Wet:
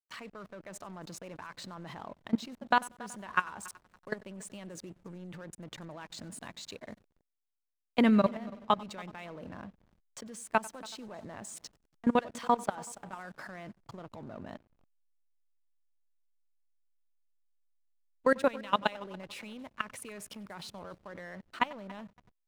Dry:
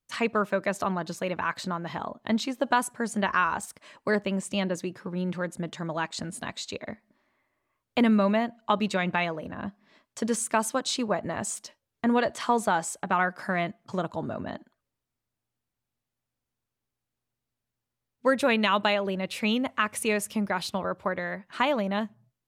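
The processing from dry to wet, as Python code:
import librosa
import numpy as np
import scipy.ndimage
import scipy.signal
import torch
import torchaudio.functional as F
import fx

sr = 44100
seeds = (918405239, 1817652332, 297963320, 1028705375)

y = fx.level_steps(x, sr, step_db=22)
y = fx.echo_heads(y, sr, ms=94, heads='first and third', feedback_pct=45, wet_db=-21.0)
y = fx.backlash(y, sr, play_db=-49.0)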